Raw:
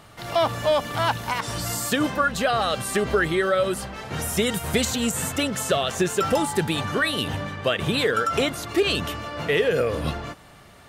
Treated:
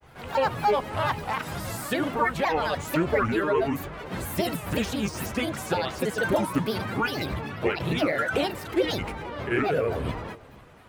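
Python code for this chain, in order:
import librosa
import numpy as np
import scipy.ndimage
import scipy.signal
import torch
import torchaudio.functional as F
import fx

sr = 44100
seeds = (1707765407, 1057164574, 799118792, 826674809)

y = fx.granulator(x, sr, seeds[0], grain_ms=100.0, per_s=27.0, spray_ms=27.0, spread_st=7)
y = fx.peak_eq(y, sr, hz=6200.0, db=-8.5, octaves=1.6)
y = y + 10.0 ** (-22.0 / 20.0) * np.pad(y, (int(484 * sr / 1000.0), 0))[:len(y)]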